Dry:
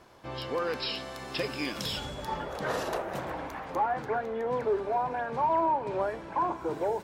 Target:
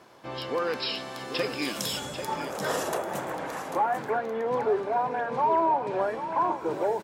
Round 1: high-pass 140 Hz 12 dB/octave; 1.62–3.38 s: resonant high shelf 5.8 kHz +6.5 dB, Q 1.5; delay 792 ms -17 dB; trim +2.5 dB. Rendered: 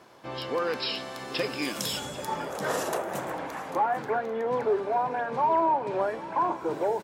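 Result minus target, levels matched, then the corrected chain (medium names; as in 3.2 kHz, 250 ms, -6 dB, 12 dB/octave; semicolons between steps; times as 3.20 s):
echo-to-direct -7 dB
high-pass 140 Hz 12 dB/octave; 1.62–3.38 s: resonant high shelf 5.8 kHz +6.5 dB, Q 1.5; delay 792 ms -10 dB; trim +2.5 dB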